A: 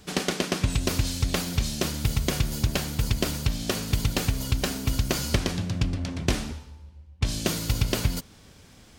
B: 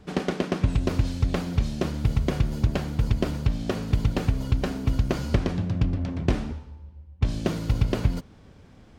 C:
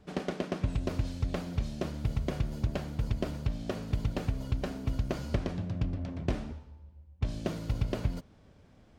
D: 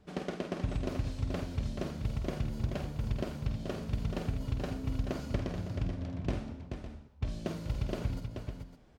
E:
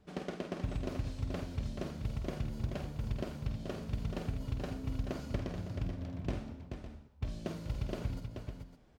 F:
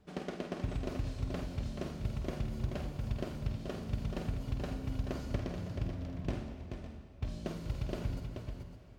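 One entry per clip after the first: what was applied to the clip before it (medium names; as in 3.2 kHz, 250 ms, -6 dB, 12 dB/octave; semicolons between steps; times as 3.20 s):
low-pass 1 kHz 6 dB/octave; trim +2.5 dB
peaking EQ 620 Hz +5 dB 0.29 oct; trim -8 dB
multi-tap echo 49/431/557 ms -8/-7/-12.5 dB; trim -3.5 dB
short-mantissa float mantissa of 6-bit; trim -3 dB
reverberation RT60 3.5 s, pre-delay 32 ms, DRR 9.5 dB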